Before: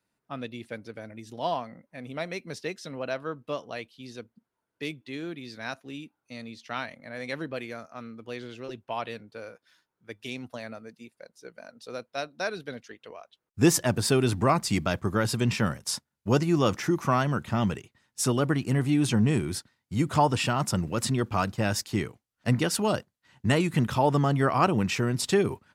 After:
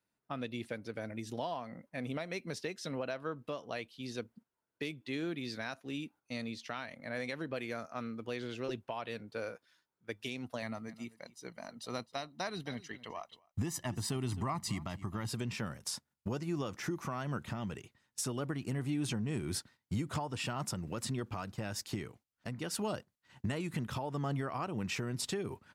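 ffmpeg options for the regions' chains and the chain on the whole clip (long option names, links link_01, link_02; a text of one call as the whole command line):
ffmpeg -i in.wav -filter_complex "[0:a]asettb=1/sr,asplit=3[link_01][link_02][link_03];[link_01]atrim=end=10.624[link_04];[link_02]atrim=start=10.62:end=15.29,asetpts=PTS-STARTPTS,afade=type=in:duration=0.004:curve=qsin,afade=type=out:start_time=4.666:duration=0.004:curve=qsin,bandreject=frequency=5200:width=30,aecho=1:1:1:0.6,atrim=end_sample=205947,aecho=1:1:259:0.0944,atrim=end_sample=205947[link_05];[link_03]atrim=start=15.286[link_06];[link_04][link_05]acrossfade=duration=0.004:curve1=hsin:curve2=qsin[link_07];[link_07][link_06]acrossfade=duration=0.004:curve1=qsin:curve2=hsin,acompressor=threshold=-33dB:ratio=5,agate=range=-8dB:threshold=-59dB:ratio=16:detection=peak,alimiter=level_in=3.5dB:limit=-24dB:level=0:latency=1:release=424,volume=-3.5dB,volume=1.5dB" out.wav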